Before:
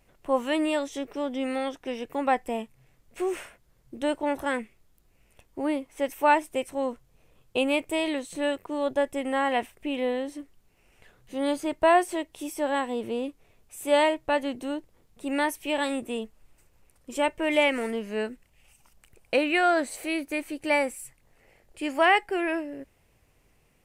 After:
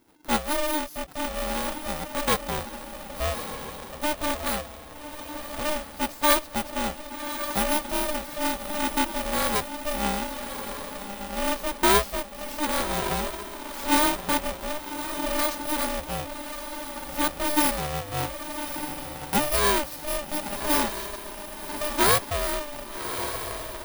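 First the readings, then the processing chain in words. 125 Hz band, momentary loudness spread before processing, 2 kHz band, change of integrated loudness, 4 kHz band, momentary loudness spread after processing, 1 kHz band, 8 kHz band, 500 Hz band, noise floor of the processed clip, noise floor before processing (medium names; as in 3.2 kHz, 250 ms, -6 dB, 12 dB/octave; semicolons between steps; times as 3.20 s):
no reading, 13 LU, -0.5 dB, +0.5 dB, +5.5 dB, 13 LU, +1.0 dB, +12.0 dB, -3.0 dB, -41 dBFS, -65 dBFS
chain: bit-reversed sample order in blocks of 16 samples; echo that smears into a reverb 1174 ms, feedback 43%, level -8 dB; polarity switched at an audio rate 300 Hz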